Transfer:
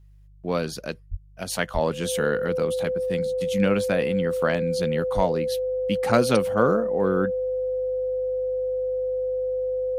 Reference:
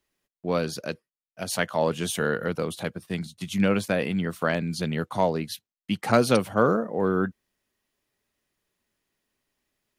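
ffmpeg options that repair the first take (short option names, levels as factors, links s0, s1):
-filter_complex "[0:a]bandreject=f=50:t=h:w=4,bandreject=f=100:t=h:w=4,bandreject=f=150:t=h:w=4,bandreject=f=510:w=30,asplit=3[s0][s1][s2];[s0]afade=t=out:st=1.1:d=0.02[s3];[s1]highpass=f=140:w=0.5412,highpass=f=140:w=1.3066,afade=t=in:st=1.1:d=0.02,afade=t=out:st=1.22:d=0.02[s4];[s2]afade=t=in:st=1.22:d=0.02[s5];[s3][s4][s5]amix=inputs=3:normalize=0,asplit=3[s6][s7][s8];[s6]afade=t=out:st=1.73:d=0.02[s9];[s7]highpass=f=140:w=0.5412,highpass=f=140:w=1.3066,afade=t=in:st=1.73:d=0.02,afade=t=out:st=1.85:d=0.02[s10];[s8]afade=t=in:st=1.85:d=0.02[s11];[s9][s10][s11]amix=inputs=3:normalize=0,asplit=3[s12][s13][s14];[s12]afade=t=out:st=5.15:d=0.02[s15];[s13]highpass=f=140:w=0.5412,highpass=f=140:w=1.3066,afade=t=in:st=5.15:d=0.02,afade=t=out:st=5.27:d=0.02[s16];[s14]afade=t=in:st=5.27:d=0.02[s17];[s15][s16][s17]amix=inputs=3:normalize=0"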